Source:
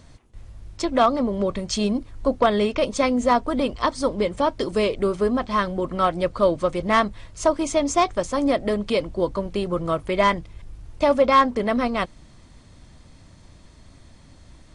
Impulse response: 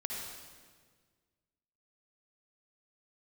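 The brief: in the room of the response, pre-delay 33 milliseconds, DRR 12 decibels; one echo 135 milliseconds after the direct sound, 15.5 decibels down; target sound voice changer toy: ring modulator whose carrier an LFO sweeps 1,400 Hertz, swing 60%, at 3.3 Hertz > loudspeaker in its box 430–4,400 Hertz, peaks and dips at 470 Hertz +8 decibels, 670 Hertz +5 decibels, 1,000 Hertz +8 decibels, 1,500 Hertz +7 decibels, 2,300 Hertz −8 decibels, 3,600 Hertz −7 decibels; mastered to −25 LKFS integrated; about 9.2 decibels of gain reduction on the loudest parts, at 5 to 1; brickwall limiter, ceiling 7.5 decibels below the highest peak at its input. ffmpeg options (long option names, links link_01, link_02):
-filter_complex "[0:a]acompressor=threshold=-23dB:ratio=5,alimiter=limit=-19dB:level=0:latency=1,aecho=1:1:135:0.168,asplit=2[link_01][link_02];[1:a]atrim=start_sample=2205,adelay=33[link_03];[link_02][link_03]afir=irnorm=-1:irlink=0,volume=-14dB[link_04];[link_01][link_04]amix=inputs=2:normalize=0,aeval=exprs='val(0)*sin(2*PI*1400*n/s+1400*0.6/3.3*sin(2*PI*3.3*n/s))':channel_layout=same,highpass=430,equalizer=frequency=470:width_type=q:width=4:gain=8,equalizer=frequency=670:width_type=q:width=4:gain=5,equalizer=frequency=1000:width_type=q:width=4:gain=8,equalizer=frequency=1500:width_type=q:width=4:gain=7,equalizer=frequency=2300:width_type=q:width=4:gain=-8,equalizer=frequency=3600:width_type=q:width=4:gain=-7,lowpass=frequency=4400:width=0.5412,lowpass=frequency=4400:width=1.3066,volume=3dB"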